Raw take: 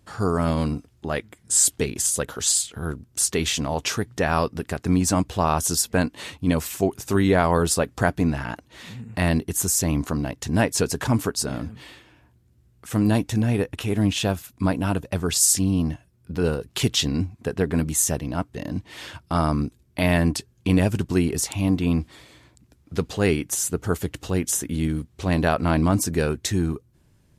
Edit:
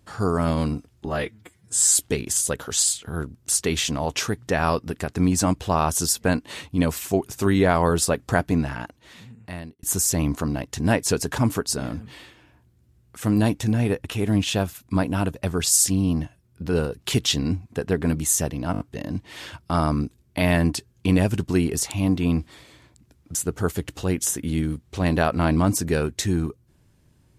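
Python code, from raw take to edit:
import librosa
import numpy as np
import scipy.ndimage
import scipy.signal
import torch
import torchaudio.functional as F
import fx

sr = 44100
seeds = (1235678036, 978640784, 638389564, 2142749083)

y = fx.edit(x, sr, fx.stretch_span(start_s=1.06, length_s=0.62, factor=1.5),
    fx.fade_out_span(start_s=8.26, length_s=1.26),
    fx.stutter(start_s=18.41, slice_s=0.02, count=5),
    fx.cut(start_s=22.96, length_s=0.65), tone=tone)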